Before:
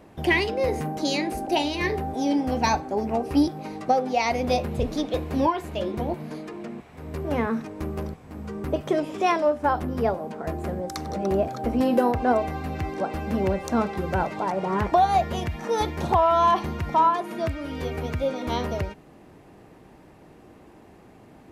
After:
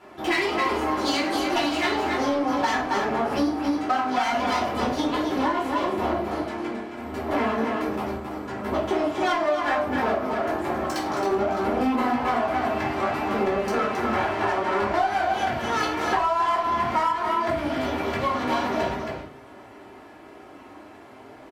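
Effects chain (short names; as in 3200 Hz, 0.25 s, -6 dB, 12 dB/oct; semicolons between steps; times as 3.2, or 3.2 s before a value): minimum comb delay 3 ms; HPF 77 Hz; on a send: echo 0.27 s -7 dB; on the sum: flange 0.37 Hz, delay 5 ms, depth 7.9 ms, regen -49%; LPF 2200 Hz 6 dB/oct; bell 1200 Hz +3 dB 1.5 oct; in parallel at -7 dB: soft clip -28.5 dBFS, distortion -7 dB; on the sum: tilt +2.5 dB/oct; shoebox room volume 350 m³, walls furnished, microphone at 4.2 m; compressor 6:1, threshold -21 dBFS, peak gain reduction 11.5 dB; gain +1 dB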